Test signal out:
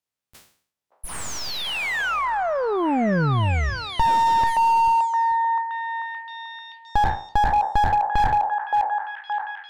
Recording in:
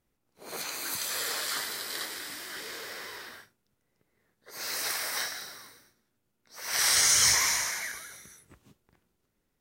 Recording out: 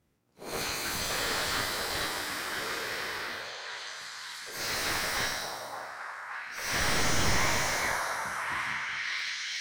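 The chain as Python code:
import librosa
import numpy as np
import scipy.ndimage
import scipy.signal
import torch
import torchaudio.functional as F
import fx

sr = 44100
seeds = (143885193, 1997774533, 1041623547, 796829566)

p1 = fx.spec_trails(x, sr, decay_s=0.52)
p2 = scipy.signal.sosfilt(scipy.signal.butter(2, 80.0, 'highpass', fs=sr, output='sos'), p1)
p3 = fx.cheby_harmonics(p2, sr, harmonics=(2, 4, 7, 8), levels_db=(-24, -18, -37, -20), full_scale_db=-8.5)
p4 = fx.low_shelf(p3, sr, hz=160.0, db=8.5)
p5 = np.clip(p4, -10.0 ** (-23.0 / 20.0), 10.0 ** (-23.0 / 20.0))
p6 = p4 + (p5 * 10.0 ** (-6.0 / 20.0))
p7 = fx.high_shelf(p6, sr, hz=10000.0, db=-6.5)
p8 = p7 + fx.echo_stepped(p7, sr, ms=571, hz=730.0, octaves=0.7, feedback_pct=70, wet_db=-1.5, dry=0)
y = fx.slew_limit(p8, sr, full_power_hz=140.0)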